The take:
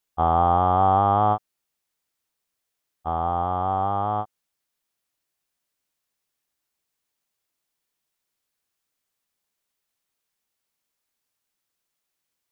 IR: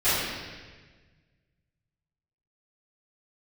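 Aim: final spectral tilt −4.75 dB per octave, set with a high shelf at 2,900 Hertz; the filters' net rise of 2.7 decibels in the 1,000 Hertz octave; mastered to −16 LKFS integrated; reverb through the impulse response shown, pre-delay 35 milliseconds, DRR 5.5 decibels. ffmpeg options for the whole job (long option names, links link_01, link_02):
-filter_complex "[0:a]equalizer=frequency=1000:width_type=o:gain=3.5,highshelf=frequency=2900:gain=3,asplit=2[link_01][link_02];[1:a]atrim=start_sample=2205,adelay=35[link_03];[link_02][link_03]afir=irnorm=-1:irlink=0,volume=-22dB[link_04];[link_01][link_04]amix=inputs=2:normalize=0,volume=3dB"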